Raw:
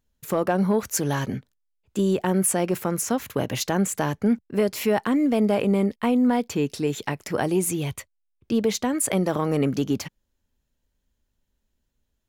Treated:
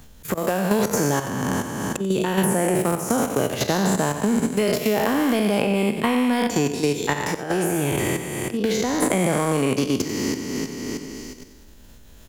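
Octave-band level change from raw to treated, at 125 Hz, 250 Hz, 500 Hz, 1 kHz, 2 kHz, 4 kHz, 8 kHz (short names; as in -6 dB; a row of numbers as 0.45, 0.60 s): +2.0, +1.5, +2.5, +4.0, +6.5, +5.5, +1.5 dB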